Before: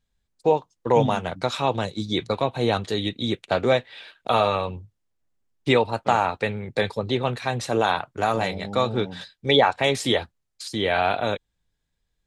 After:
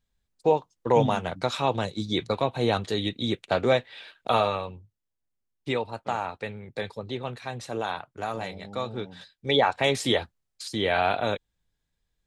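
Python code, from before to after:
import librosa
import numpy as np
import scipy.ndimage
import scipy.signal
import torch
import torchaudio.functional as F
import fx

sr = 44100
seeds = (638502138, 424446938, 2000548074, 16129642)

y = fx.gain(x, sr, db=fx.line((4.35, -2.0), (4.77, -9.0), (9.15, -9.0), (9.79, -2.0)))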